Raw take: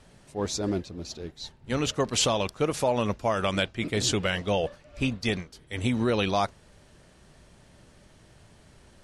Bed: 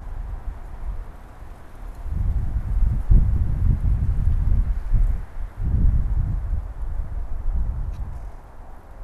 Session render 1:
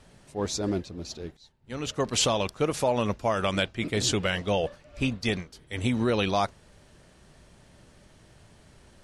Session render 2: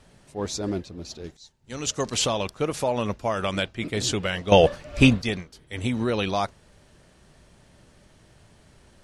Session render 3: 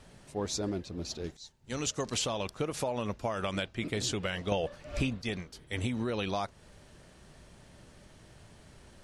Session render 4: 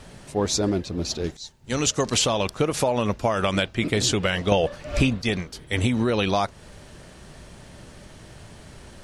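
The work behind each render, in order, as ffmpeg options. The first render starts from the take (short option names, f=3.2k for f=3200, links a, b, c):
-filter_complex "[0:a]asplit=2[a][b];[a]atrim=end=1.37,asetpts=PTS-STARTPTS,afade=t=out:st=1.366:d=0.004:c=hsin:silence=0.158489[c];[b]atrim=start=1.37,asetpts=PTS-STARTPTS,afade=t=in:d=0.7:c=qua:silence=0.158489[d];[c][d]concat=n=2:v=0:a=1"
-filter_complex "[0:a]asettb=1/sr,asplit=3[a][b][c];[a]atrim=end=1.244[d];[b]atrim=start=1.24:end=2.14,asetpts=PTS-STARTPTS,afade=t=in:d=0.004:c=qsin,afade=t=out:st=0.896:d=0.004:c=qsin,equalizer=f=6.7k:w=1:g=12[e];[c]atrim=start=2.136[f];[d][e]acrossfade=d=0.004:c1=hsin:c2=qsin[g];[g][f]acrossfade=d=0.004:c1=qsin:c2=hsin,asplit=3[h][i][j];[h]atrim=end=4.522[k];[i]atrim=start=4.518:end=5.222,asetpts=PTS-STARTPTS,volume=11.5dB[l];[j]atrim=start=5.218[m];[k][l]acrossfade=d=0.004:c1=hsin:c2=hsin[n];[n][m]acrossfade=d=0.004:c1=hsin:c2=hsin"
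-af "acompressor=threshold=-30dB:ratio=5"
-af "volume=10.5dB"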